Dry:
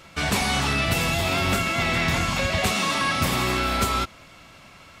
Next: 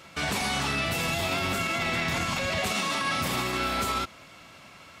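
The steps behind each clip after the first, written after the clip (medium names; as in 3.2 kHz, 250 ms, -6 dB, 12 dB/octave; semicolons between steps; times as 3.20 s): high-pass 120 Hz 6 dB/octave; peak limiter -18 dBFS, peak gain reduction 7 dB; trim -1 dB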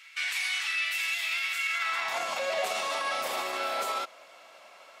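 high-pass sweep 2.1 kHz -> 590 Hz, 1.66–2.27 s; trim -4.5 dB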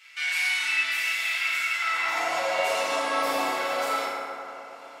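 FDN reverb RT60 2.9 s, high-frequency decay 0.35×, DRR -8.5 dB; trim -4 dB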